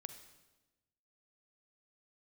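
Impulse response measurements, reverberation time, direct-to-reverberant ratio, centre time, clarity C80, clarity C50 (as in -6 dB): 1.1 s, 8.5 dB, 15 ms, 11.5 dB, 9.0 dB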